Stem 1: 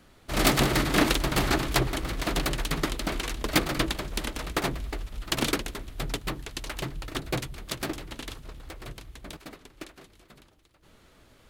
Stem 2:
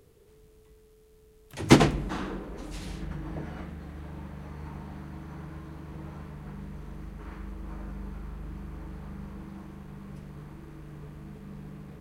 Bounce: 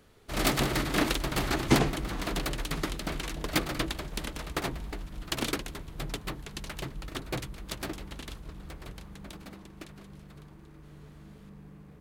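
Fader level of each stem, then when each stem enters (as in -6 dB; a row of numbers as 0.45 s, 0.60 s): -4.5 dB, -6.5 dB; 0.00 s, 0.00 s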